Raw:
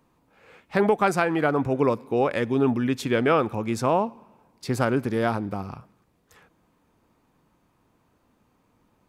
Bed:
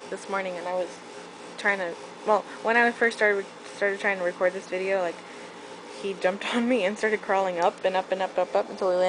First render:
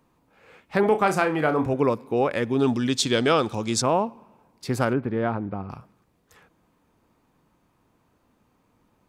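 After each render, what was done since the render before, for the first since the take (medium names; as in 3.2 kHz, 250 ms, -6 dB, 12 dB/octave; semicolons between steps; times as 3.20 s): 0.80–1.74 s: flutter echo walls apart 5.5 m, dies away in 0.23 s; 2.59–3.82 s: high-order bell 5.3 kHz +13 dB; 4.93–5.70 s: distance through air 430 m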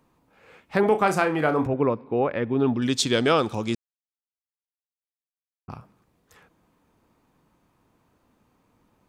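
1.67–2.82 s: distance through air 340 m; 3.75–5.68 s: mute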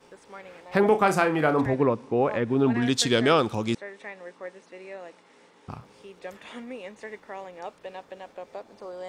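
add bed -15 dB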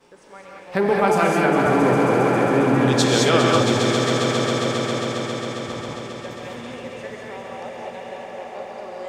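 echo with a slow build-up 135 ms, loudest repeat 5, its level -10 dB; gated-style reverb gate 240 ms rising, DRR -1.5 dB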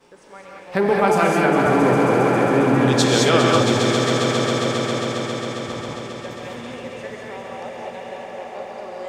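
trim +1 dB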